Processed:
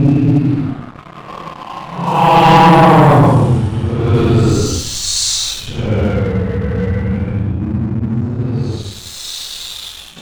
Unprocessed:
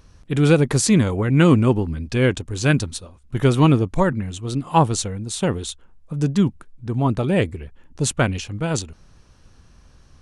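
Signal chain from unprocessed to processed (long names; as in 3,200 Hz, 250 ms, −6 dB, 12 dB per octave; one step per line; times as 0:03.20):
extreme stretch with random phases 12×, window 0.05 s, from 0:04.56
low-pass that shuts in the quiet parts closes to 2,300 Hz, open at −11.5 dBFS
leveller curve on the samples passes 3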